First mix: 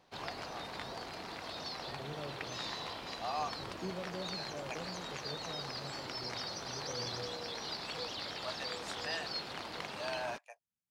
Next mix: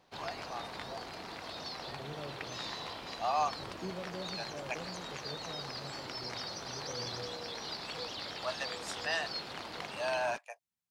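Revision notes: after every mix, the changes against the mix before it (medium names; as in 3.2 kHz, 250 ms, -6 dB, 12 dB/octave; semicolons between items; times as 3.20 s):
first voice +6.5 dB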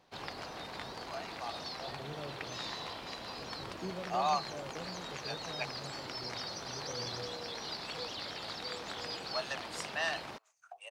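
first voice: entry +0.90 s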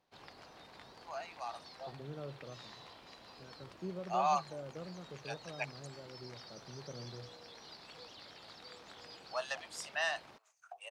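background -12.0 dB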